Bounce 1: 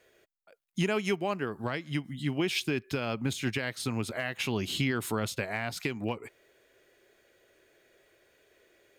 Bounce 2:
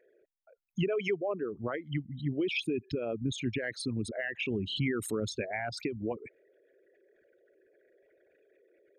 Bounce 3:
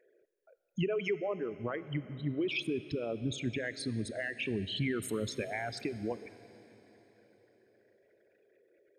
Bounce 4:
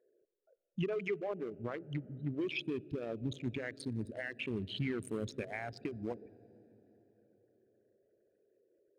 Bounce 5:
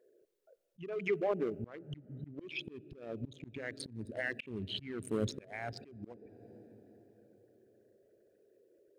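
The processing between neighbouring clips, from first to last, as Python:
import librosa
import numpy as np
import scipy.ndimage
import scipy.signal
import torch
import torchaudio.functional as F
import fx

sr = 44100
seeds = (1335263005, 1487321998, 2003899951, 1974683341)

y1 = fx.envelope_sharpen(x, sr, power=3.0)
y1 = F.gain(torch.from_numpy(y1), -1.5).numpy()
y2 = fx.rev_plate(y1, sr, seeds[0], rt60_s=4.2, hf_ratio=0.95, predelay_ms=0, drr_db=14.0)
y2 = F.gain(torch.from_numpy(y2), -2.0).numpy()
y3 = fx.wiener(y2, sr, points=41)
y3 = F.gain(torch.from_numpy(y3), -2.5).numpy()
y4 = fx.auto_swell(y3, sr, attack_ms=449.0)
y4 = F.gain(torch.from_numpy(y4), 6.0).numpy()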